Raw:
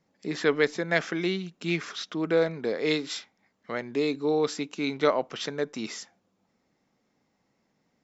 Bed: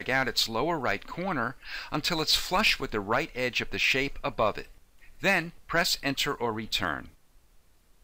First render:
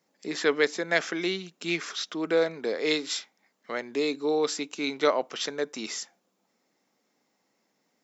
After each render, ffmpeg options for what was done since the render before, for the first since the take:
-af "highpass=260,highshelf=f=6000:g=10"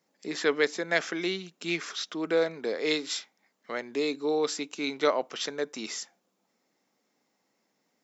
-af "volume=0.841"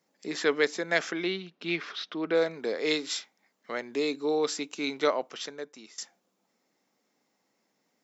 -filter_complex "[0:a]asettb=1/sr,asplit=3[s0][s1][s2];[s0]atrim=end=1.124[s3];[s1]atrim=start=1.12:end=2.35,asetpts=PTS-STARTPTS,afade=t=in:d=0.004:c=qsin,afade=t=out:st=1.226:d=0.004:c=qsin,lowpass=f=4300:w=0.5412,lowpass=f=4300:w=1.3066[s4];[s2]atrim=start=2.346[s5];[s3][s4]acrossfade=d=0.004:c1=hsin:c2=qsin[s6];[s6][s5]acrossfade=d=0.004:c1=qsin:c2=hsin,asplit=2[s7][s8];[s7]atrim=end=5.98,asetpts=PTS-STARTPTS,afade=t=out:st=4.97:d=1.01:silence=0.0944061[s9];[s8]atrim=start=5.98,asetpts=PTS-STARTPTS,afade=t=in:d=0.004:c=hsin:silence=0.0944061[s10];[s9][s10]concat=n=2:v=0:a=1"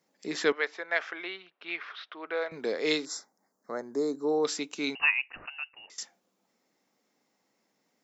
-filter_complex "[0:a]asettb=1/sr,asplit=3[s0][s1][s2];[s0]atrim=end=0.524[s3];[s1]atrim=start=0.52:end=2.52,asetpts=PTS-STARTPTS,afade=t=in:d=0.004:c=qsin,afade=t=out:st=1.996:d=0.004:c=qsin,highpass=730,lowpass=2500[s4];[s2]atrim=start=2.516[s5];[s3][s4]acrossfade=d=0.004:c1=hsin:c2=qsin[s6];[s6][s5]acrossfade=d=0.004:c1=qsin:c2=hsin,asettb=1/sr,asplit=3[s7][s8][s9];[s7]atrim=end=3.054[s10];[s8]atrim=start=3.05:end=4.45,asetpts=PTS-STARTPTS,afade=t=in:d=0.004:c=qsin,afade=t=out:st=1.396:d=0.004:c=qsin,asuperstop=centerf=2800:order=4:qfactor=0.66[s11];[s9]atrim=start=4.446[s12];[s10][s11]acrossfade=d=0.004:c1=hsin:c2=qsin[s13];[s13][s12]acrossfade=d=0.004:c1=qsin:c2=hsin,asettb=1/sr,asplit=3[s14][s15][s16];[s14]atrim=end=4.954[s17];[s15]atrim=start=4.95:end=5.9,asetpts=PTS-STARTPTS,afade=t=in:d=0.004:c=qsin,afade=t=out:st=0.946:d=0.004:c=qsin,lowpass=f=2600:t=q:w=0.5098,lowpass=f=2600:t=q:w=0.6013,lowpass=f=2600:t=q:w=0.9,lowpass=f=2600:t=q:w=2.563,afreqshift=-3100[s18];[s16]atrim=start=5.896[s19];[s17][s18]acrossfade=d=0.004:c1=hsin:c2=qsin[s20];[s20][s19]acrossfade=d=0.004:c1=qsin:c2=hsin"

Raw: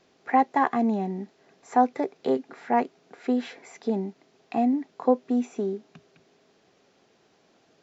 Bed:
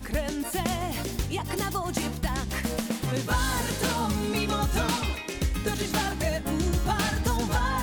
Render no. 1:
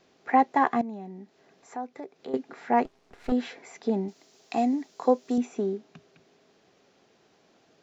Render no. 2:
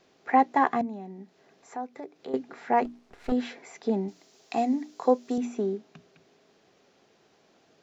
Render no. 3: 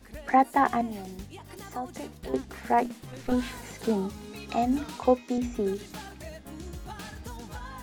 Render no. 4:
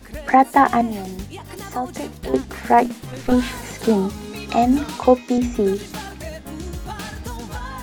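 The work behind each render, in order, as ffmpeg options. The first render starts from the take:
-filter_complex "[0:a]asettb=1/sr,asplit=3[s0][s1][s2];[s0]atrim=end=0.814[s3];[s1]atrim=start=0.81:end=2.34,asetpts=PTS-STARTPTS,afade=t=in:d=0.004:c=qsin,afade=t=out:st=1.526:d=0.004:c=qsin,acompressor=threshold=0.00141:ratio=1.5:attack=3.2:release=140:knee=1:detection=peak[s4];[s2]atrim=start=2.336[s5];[s3][s4]acrossfade=d=0.004:c1=hsin:c2=qsin[s6];[s6][s5]acrossfade=d=0.004:c1=qsin:c2=hsin,asettb=1/sr,asplit=3[s7][s8][s9];[s7]atrim=end=2.854[s10];[s8]atrim=start=2.85:end=3.32,asetpts=PTS-STARTPTS,afade=t=in:d=0.004:c=qsin,afade=t=out:st=0.466:d=0.004:c=qsin,aeval=exprs='max(val(0),0)':c=same[s11];[s9]atrim=start=3.316[s12];[s10][s11]acrossfade=d=0.004:c1=hsin:c2=qsin[s13];[s13][s12]acrossfade=d=0.004:c1=qsin:c2=hsin,asettb=1/sr,asplit=3[s14][s15][s16];[s14]atrim=end=4.084[s17];[s15]atrim=start=4.08:end=5.38,asetpts=PTS-STARTPTS,afade=t=in:d=0.004:c=qsin,afade=t=out:st=1.296:d=0.004:c=qsin,bass=f=250:g=-5,treble=f=4000:g=15[s18];[s16]atrim=start=5.376[s19];[s17][s18]acrossfade=d=0.004:c1=hsin:c2=qsin[s20];[s20][s19]acrossfade=d=0.004:c1=qsin:c2=hsin"
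-af "bandreject=f=60:t=h:w=6,bandreject=f=120:t=h:w=6,bandreject=f=180:t=h:w=6,bandreject=f=240:t=h:w=6,bandreject=f=300:t=h:w=6"
-filter_complex "[1:a]volume=0.188[s0];[0:a][s0]amix=inputs=2:normalize=0"
-af "volume=2.99,alimiter=limit=0.794:level=0:latency=1"

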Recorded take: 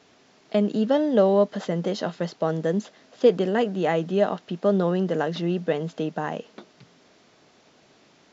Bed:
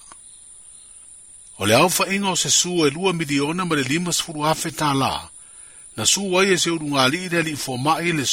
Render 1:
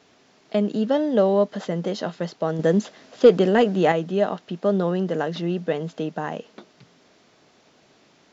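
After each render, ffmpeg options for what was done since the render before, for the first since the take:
-filter_complex "[0:a]asettb=1/sr,asplit=3[s0][s1][s2];[s0]atrim=end=2.594[s3];[s1]atrim=start=2.59:end=3.92,asetpts=PTS-STARTPTS,afade=t=in:d=0.004:c=qsin,afade=t=out:st=1.326:d=0.004:c=qsin,acontrast=36[s4];[s2]atrim=start=3.916[s5];[s3][s4]acrossfade=d=0.004:c1=hsin:c2=qsin[s6];[s6][s5]acrossfade=d=0.004:c1=qsin:c2=hsin"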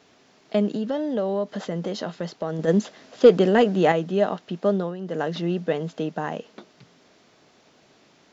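-filter_complex "[0:a]asplit=3[s0][s1][s2];[s0]afade=t=out:st=0.74:d=0.02[s3];[s1]acompressor=threshold=0.0631:ratio=2.5:attack=3.2:release=140:knee=1:detection=peak,afade=t=in:st=0.74:d=0.02,afade=t=out:st=2.67:d=0.02[s4];[s2]afade=t=in:st=2.67:d=0.02[s5];[s3][s4][s5]amix=inputs=3:normalize=0,asplit=3[s6][s7][s8];[s6]atrim=end=4.96,asetpts=PTS-STARTPTS,afade=t=out:st=4.68:d=0.28:silence=0.266073[s9];[s7]atrim=start=4.96:end=4.99,asetpts=PTS-STARTPTS,volume=0.266[s10];[s8]atrim=start=4.99,asetpts=PTS-STARTPTS,afade=t=in:d=0.28:silence=0.266073[s11];[s9][s10][s11]concat=n=3:v=0:a=1"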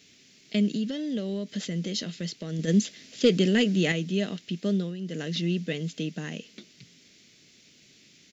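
-af "firequalizer=gain_entry='entry(200,0);entry(850,-23);entry(2100,3);entry(7100,8)':delay=0.05:min_phase=1"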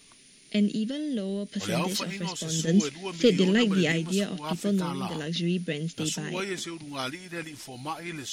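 -filter_complex "[1:a]volume=0.168[s0];[0:a][s0]amix=inputs=2:normalize=0"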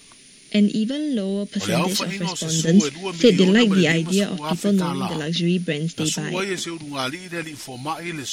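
-af "volume=2.24,alimiter=limit=0.708:level=0:latency=1"

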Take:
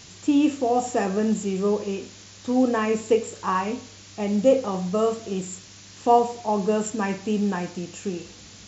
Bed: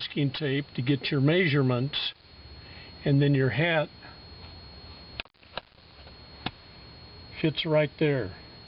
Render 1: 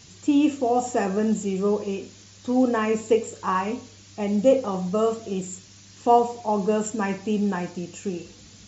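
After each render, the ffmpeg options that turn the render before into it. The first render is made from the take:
-af "afftdn=nr=6:nf=-46"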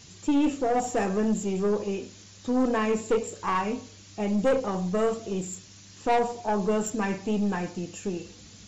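-af "aeval=exprs='(tanh(7.94*val(0)+0.3)-tanh(0.3))/7.94':c=same"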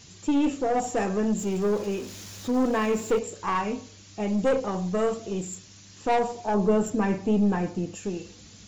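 -filter_complex "[0:a]asettb=1/sr,asplit=3[s0][s1][s2];[s0]atrim=end=1.384[s3];[s1]atrim=start=1.38:end=3.19,asetpts=PTS-STARTPTS,afade=t=in:d=0.004:c=qsin,afade=t=out:st=1.806:d=0.004:c=qsin,aeval=exprs='val(0)+0.5*0.0106*sgn(val(0))':c=same[s4];[s2]atrim=start=3.186[s5];[s3][s4]acrossfade=d=0.004:c1=hsin:c2=qsin[s6];[s6][s5]acrossfade=d=0.004:c1=qsin:c2=hsin,asettb=1/sr,asplit=3[s7][s8][s9];[s7]atrim=end=6.544[s10];[s8]atrim=start=6.54:end=7.95,asetpts=PTS-STARTPTS,afade=t=in:d=0.004:c=qsin,afade=t=out:st=1.406:d=0.004:c=qsin,tiltshelf=f=1300:g=4.5[s11];[s9]atrim=start=7.946[s12];[s10][s11]acrossfade=d=0.004:c1=hsin:c2=qsin[s13];[s13][s12]acrossfade=d=0.004:c1=qsin:c2=hsin"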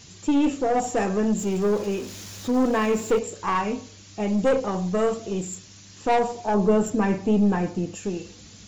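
-af "volume=1.33"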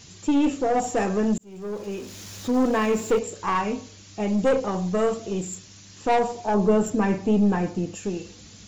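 -filter_complex "[0:a]asplit=2[s0][s1];[s0]atrim=end=1.38,asetpts=PTS-STARTPTS,afade=t=out:st=1.376:d=0.004:c=hsin[s2];[s1]atrim=start=1.38,asetpts=PTS-STARTPTS,afade=t=in:d=0.97[s3];[s2][s3]concat=n=2:v=0:a=1"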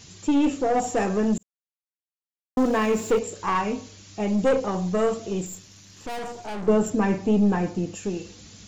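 -filter_complex "[0:a]asettb=1/sr,asplit=3[s0][s1][s2];[s0]atrim=end=5.464[s3];[s1]atrim=start=5.46:end=6.68,asetpts=PTS-STARTPTS,afade=t=in:d=0.004:c=qsin,afade=t=out:st=1.216:d=0.004:c=qsin,aeval=exprs='(tanh(35.5*val(0)+0.5)-tanh(0.5))/35.5':c=same[s4];[s2]atrim=start=6.676[s5];[s3][s4]acrossfade=d=0.004:c1=hsin:c2=qsin[s6];[s6][s5]acrossfade=d=0.004:c1=qsin:c2=hsin,asplit=3[s7][s8][s9];[s7]atrim=end=1.43,asetpts=PTS-STARTPTS,afade=t=out:st=1.426:d=0.004:c=hsin[s10];[s8]atrim=start=1.43:end=2.57,asetpts=PTS-STARTPTS,volume=0[s11];[s9]atrim=start=2.57,asetpts=PTS-STARTPTS,afade=t=in:d=0.004:c=hsin[s12];[s10][s11][s12]concat=n=3:v=0:a=1"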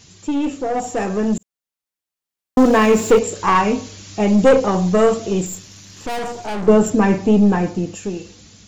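-af "dynaudnorm=f=450:g=7:m=3.16"

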